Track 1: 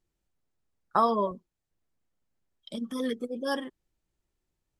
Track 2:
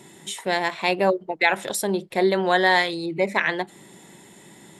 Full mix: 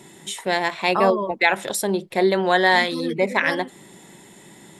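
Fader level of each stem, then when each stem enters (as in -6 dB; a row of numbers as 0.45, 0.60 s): +1.0, +1.5 dB; 0.00, 0.00 s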